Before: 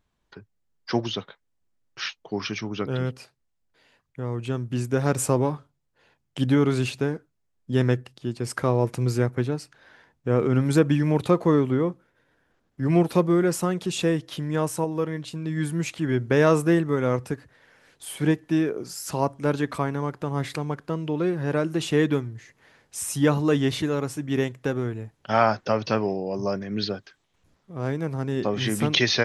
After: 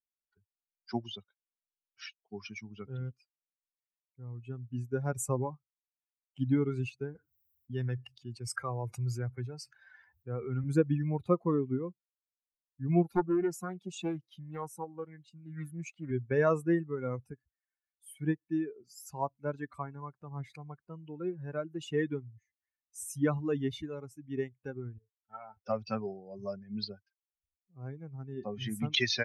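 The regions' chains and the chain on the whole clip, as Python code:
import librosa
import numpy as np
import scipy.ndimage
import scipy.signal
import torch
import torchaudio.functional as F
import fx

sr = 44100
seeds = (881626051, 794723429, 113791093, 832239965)

y = fx.chain(x, sr, fx.highpass(hz=78.0, slope=24),
    fx.peak_eq(hz=220.0, db=-6.0, octaves=2.2),
    fx.env_flatten(amount_pct=50), at=(7.15, 10.64))
y = fx.chain(y, sr, fx.highpass(hz=67.0, slope=6),
    fx.doppler_dist(depth_ms=0.49), at=(13.14, 16.11))
y = fx.chain(y, sr, fx.air_absorb(metres=210.0),
    fx.comb_fb(f0_hz=440.0, decay_s=0.22, harmonics='all', damping=0.0, mix_pct=80), at=(24.98, 25.57))
y = fx.bin_expand(y, sr, power=2.0)
y = fx.high_shelf(y, sr, hz=7800.0, db=-3.5)
y = y * librosa.db_to_amplitude(-4.5)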